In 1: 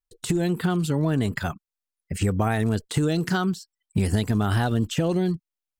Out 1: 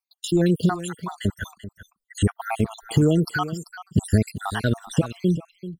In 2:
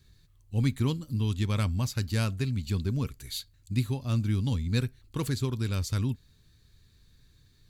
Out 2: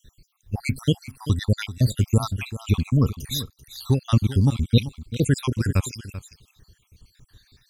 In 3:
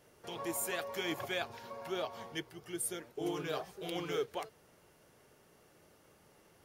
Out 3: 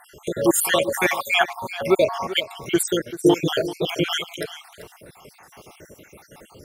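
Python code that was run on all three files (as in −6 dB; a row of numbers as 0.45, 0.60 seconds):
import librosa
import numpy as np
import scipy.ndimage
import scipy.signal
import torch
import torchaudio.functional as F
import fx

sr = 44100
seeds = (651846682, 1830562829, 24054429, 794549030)

y = fx.spec_dropout(x, sr, seeds[0], share_pct=68)
y = y + 10.0 ** (-14.0 / 20.0) * np.pad(y, (int(388 * sr / 1000.0), 0))[:len(y)]
y = y * 10.0 ** (-24 / 20.0) / np.sqrt(np.mean(np.square(y)))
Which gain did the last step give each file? +5.0, +11.5, +22.0 decibels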